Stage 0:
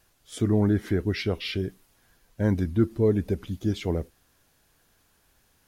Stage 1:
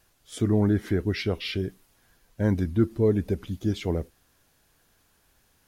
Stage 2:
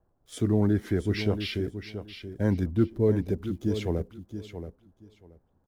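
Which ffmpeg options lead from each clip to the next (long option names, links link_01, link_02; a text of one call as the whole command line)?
ffmpeg -i in.wav -af anull out.wav
ffmpeg -i in.wav -filter_complex "[0:a]acrossover=split=300|1000[link_01][link_02][link_03];[link_03]aeval=exprs='sgn(val(0))*max(abs(val(0))-0.00119,0)':channel_layout=same[link_04];[link_01][link_02][link_04]amix=inputs=3:normalize=0,aecho=1:1:678|1356|2034:0.316|0.0569|0.0102,volume=-1.5dB" out.wav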